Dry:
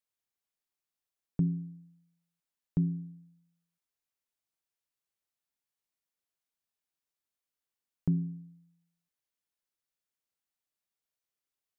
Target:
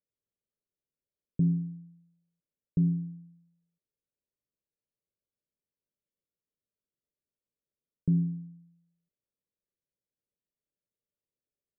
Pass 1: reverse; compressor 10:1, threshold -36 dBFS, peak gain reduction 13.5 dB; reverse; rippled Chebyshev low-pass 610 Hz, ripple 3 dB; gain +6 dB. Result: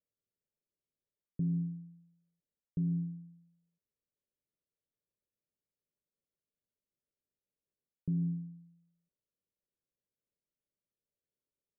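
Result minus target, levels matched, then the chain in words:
compressor: peak gain reduction +8 dB
reverse; compressor 10:1, threshold -27 dBFS, peak gain reduction 5.5 dB; reverse; rippled Chebyshev low-pass 610 Hz, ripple 3 dB; gain +6 dB

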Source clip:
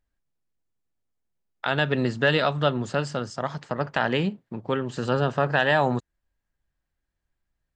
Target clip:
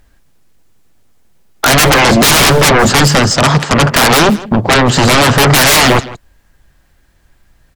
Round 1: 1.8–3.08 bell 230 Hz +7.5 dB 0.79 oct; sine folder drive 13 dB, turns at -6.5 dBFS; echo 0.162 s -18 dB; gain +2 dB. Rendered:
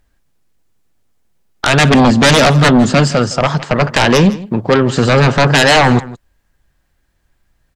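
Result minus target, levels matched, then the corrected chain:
sine folder: distortion -15 dB
1.8–3.08 bell 230 Hz +7.5 dB 0.79 oct; sine folder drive 23 dB, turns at -6.5 dBFS; echo 0.162 s -18 dB; gain +2 dB

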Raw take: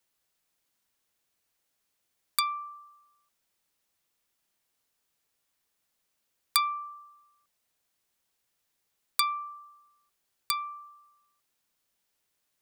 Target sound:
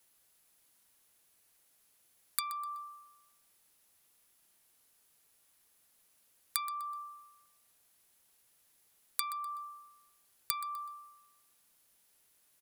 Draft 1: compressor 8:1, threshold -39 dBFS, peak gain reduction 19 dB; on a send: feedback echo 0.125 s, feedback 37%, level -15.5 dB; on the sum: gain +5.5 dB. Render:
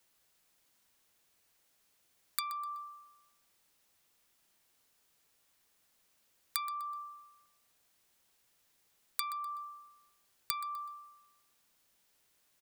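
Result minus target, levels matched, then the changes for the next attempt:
8000 Hz band -3.5 dB
add after compressor: bell 11000 Hz +9.5 dB 0.5 oct

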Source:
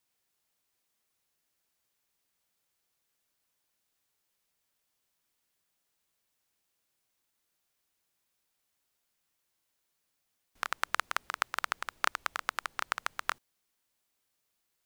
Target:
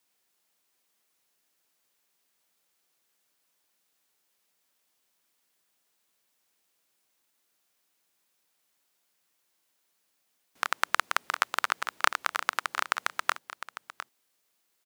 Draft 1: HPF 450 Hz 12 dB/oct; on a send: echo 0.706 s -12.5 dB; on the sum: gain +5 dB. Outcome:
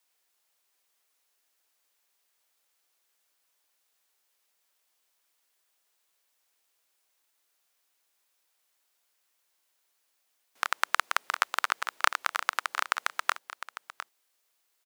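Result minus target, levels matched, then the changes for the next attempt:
250 Hz band -7.0 dB
change: HPF 180 Hz 12 dB/oct

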